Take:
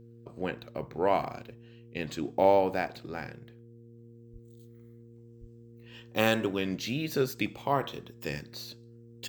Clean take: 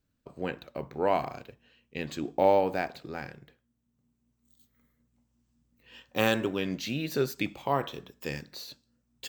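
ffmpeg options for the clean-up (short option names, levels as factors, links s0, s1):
-filter_complex "[0:a]bandreject=f=116.8:t=h:w=4,bandreject=f=233.6:t=h:w=4,bandreject=f=350.4:t=h:w=4,bandreject=f=467.2:t=h:w=4,asplit=3[s0][s1][s2];[s0]afade=t=out:st=4.32:d=0.02[s3];[s1]highpass=f=140:w=0.5412,highpass=f=140:w=1.3066,afade=t=in:st=4.32:d=0.02,afade=t=out:st=4.44:d=0.02[s4];[s2]afade=t=in:st=4.44:d=0.02[s5];[s3][s4][s5]amix=inputs=3:normalize=0,asplit=3[s6][s7][s8];[s6]afade=t=out:st=5.4:d=0.02[s9];[s7]highpass=f=140:w=0.5412,highpass=f=140:w=1.3066,afade=t=in:st=5.4:d=0.02,afade=t=out:st=5.52:d=0.02[s10];[s8]afade=t=in:st=5.52:d=0.02[s11];[s9][s10][s11]amix=inputs=3:normalize=0"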